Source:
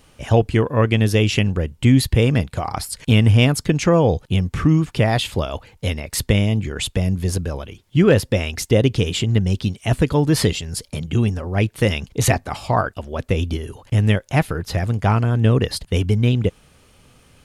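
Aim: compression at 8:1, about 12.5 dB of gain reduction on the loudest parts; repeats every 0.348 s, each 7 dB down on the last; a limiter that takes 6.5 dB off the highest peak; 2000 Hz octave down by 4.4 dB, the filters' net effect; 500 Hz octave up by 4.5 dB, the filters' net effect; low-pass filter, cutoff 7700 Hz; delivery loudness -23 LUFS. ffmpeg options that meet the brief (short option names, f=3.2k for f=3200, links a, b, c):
-af "lowpass=7.7k,equalizer=f=500:t=o:g=5.5,equalizer=f=2k:t=o:g=-6,acompressor=threshold=-19dB:ratio=8,alimiter=limit=-15dB:level=0:latency=1,aecho=1:1:348|696|1044|1392|1740:0.447|0.201|0.0905|0.0407|0.0183,volume=2.5dB"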